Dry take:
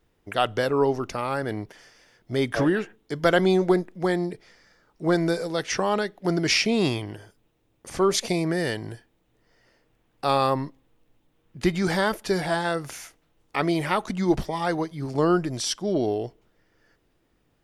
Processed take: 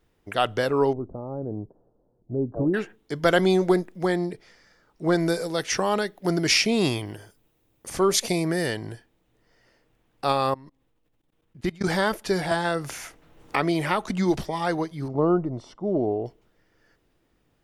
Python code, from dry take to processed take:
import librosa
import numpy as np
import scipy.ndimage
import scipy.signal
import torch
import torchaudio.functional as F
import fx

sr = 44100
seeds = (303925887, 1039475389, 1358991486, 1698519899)

y = fx.gaussian_blur(x, sr, sigma=13.0, at=(0.93, 2.74))
y = fx.high_shelf(y, sr, hz=6000.0, db=5.5, at=(3.28, 4.05))
y = fx.high_shelf(y, sr, hz=9500.0, db=11.5, at=(5.19, 8.67))
y = fx.level_steps(y, sr, step_db=23, at=(10.32, 11.84))
y = fx.band_squash(y, sr, depth_pct=70, at=(12.51, 14.42))
y = fx.savgol(y, sr, points=65, at=(15.08, 16.26))